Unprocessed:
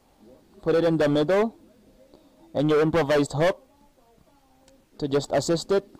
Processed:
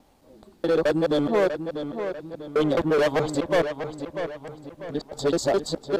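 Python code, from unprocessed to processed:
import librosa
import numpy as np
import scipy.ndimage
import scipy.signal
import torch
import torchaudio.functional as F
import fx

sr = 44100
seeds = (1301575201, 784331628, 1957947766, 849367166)

y = fx.local_reverse(x, sr, ms=213.0)
y = fx.echo_filtered(y, sr, ms=644, feedback_pct=42, hz=4900.0, wet_db=-8.5)
y = fx.dynamic_eq(y, sr, hz=130.0, q=1.3, threshold_db=-42.0, ratio=4.0, max_db=-5)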